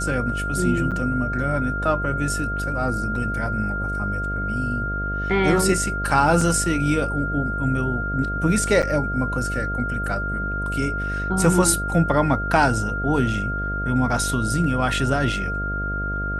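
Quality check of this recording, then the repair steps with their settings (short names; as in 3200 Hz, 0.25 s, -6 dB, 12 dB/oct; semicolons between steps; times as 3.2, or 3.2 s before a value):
buzz 50 Hz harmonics 14 -28 dBFS
tone 1400 Hz -26 dBFS
0.91–0.92 gap 7.2 ms
6.41 gap 4 ms
8.82–8.83 gap 7.9 ms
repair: de-hum 50 Hz, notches 14; notch 1400 Hz, Q 30; interpolate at 0.91, 7.2 ms; interpolate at 6.41, 4 ms; interpolate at 8.82, 7.9 ms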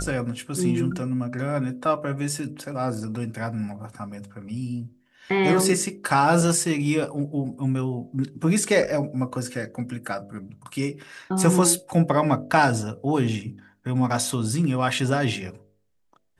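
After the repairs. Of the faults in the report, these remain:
none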